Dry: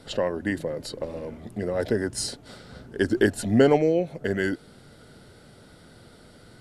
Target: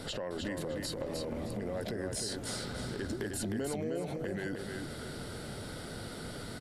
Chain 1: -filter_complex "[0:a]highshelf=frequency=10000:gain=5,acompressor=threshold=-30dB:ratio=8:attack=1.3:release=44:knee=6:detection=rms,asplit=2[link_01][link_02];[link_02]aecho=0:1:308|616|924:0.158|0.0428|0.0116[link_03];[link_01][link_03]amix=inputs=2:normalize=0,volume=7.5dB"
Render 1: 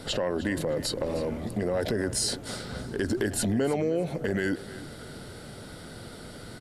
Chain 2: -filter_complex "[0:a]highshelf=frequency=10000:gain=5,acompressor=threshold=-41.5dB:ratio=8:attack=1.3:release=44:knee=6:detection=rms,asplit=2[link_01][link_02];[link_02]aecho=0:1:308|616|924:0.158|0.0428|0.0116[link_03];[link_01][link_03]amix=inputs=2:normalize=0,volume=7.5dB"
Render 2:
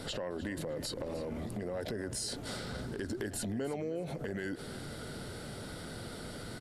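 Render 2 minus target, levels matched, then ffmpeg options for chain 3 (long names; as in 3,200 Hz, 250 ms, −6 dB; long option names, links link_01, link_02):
echo-to-direct −11.5 dB
-filter_complex "[0:a]highshelf=frequency=10000:gain=5,acompressor=threshold=-41.5dB:ratio=8:attack=1.3:release=44:knee=6:detection=rms,asplit=2[link_01][link_02];[link_02]aecho=0:1:308|616|924|1232:0.596|0.161|0.0434|0.0117[link_03];[link_01][link_03]amix=inputs=2:normalize=0,volume=7.5dB"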